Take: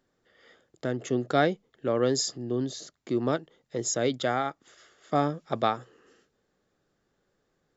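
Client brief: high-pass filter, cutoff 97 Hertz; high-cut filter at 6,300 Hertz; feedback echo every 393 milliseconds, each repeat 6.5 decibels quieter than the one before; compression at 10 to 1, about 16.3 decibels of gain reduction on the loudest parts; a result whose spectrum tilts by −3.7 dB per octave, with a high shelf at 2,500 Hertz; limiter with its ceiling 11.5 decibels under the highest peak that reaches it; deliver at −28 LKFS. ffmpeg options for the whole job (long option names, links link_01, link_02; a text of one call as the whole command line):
ffmpeg -i in.wav -af "highpass=97,lowpass=6300,highshelf=frequency=2500:gain=7.5,acompressor=threshold=-35dB:ratio=10,alimiter=level_in=9dB:limit=-24dB:level=0:latency=1,volume=-9dB,aecho=1:1:393|786|1179|1572|1965|2358:0.473|0.222|0.105|0.0491|0.0231|0.0109,volume=15.5dB" out.wav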